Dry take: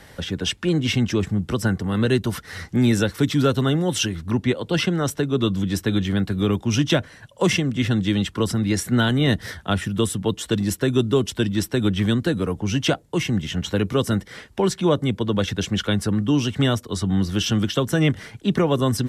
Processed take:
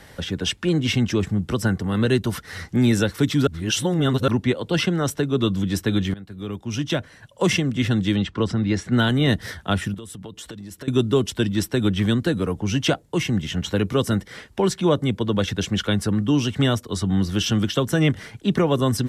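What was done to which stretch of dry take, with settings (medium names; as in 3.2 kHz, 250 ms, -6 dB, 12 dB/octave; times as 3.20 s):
3.47–4.28 s: reverse
6.14–7.56 s: fade in, from -20.5 dB
8.16–8.92 s: distance through air 120 m
9.94–10.88 s: compression 12:1, threshold -33 dBFS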